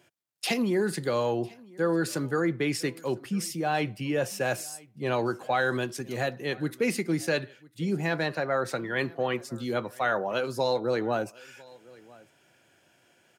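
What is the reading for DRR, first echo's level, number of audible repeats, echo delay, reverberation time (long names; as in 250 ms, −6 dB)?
no reverb audible, −24.0 dB, 1, 1,001 ms, no reverb audible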